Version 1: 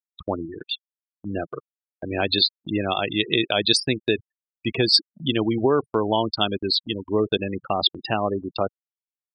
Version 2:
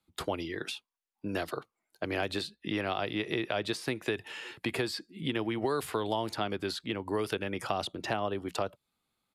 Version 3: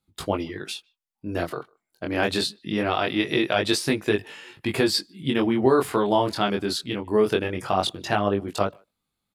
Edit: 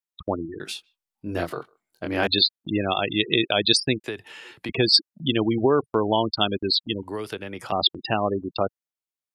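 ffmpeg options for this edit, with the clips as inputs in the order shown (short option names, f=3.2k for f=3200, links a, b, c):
-filter_complex "[1:a]asplit=2[a][b];[0:a]asplit=4[c][d][e][f];[c]atrim=end=0.602[g];[2:a]atrim=start=0.598:end=2.272[h];[d]atrim=start=2.268:end=4.042[i];[a]atrim=start=4.038:end=4.692[j];[e]atrim=start=4.688:end=7.032[k];[b]atrim=start=7.028:end=7.722[l];[f]atrim=start=7.718[m];[g][h]acrossfade=d=0.004:c1=hsin:c2=hsin[n];[n][i]acrossfade=d=0.004:c1=hsin:c2=hsin[o];[o][j]acrossfade=d=0.004:c1=hsin:c2=hsin[p];[p][k]acrossfade=d=0.004:c1=hsin:c2=hsin[q];[q][l]acrossfade=d=0.004:c1=hsin:c2=hsin[r];[r][m]acrossfade=d=0.004:c1=hsin:c2=hsin"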